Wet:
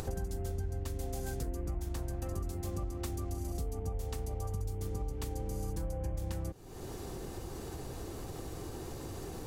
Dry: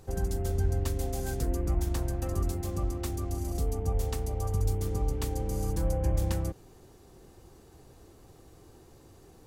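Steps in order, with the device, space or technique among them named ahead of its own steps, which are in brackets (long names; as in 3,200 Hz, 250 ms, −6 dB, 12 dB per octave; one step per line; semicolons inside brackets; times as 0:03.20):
upward and downward compression (upward compression, threshold −43 dBFS; downward compressor 5 to 1, threshold −44 dBFS, peak gain reduction 19.5 dB)
level +8.5 dB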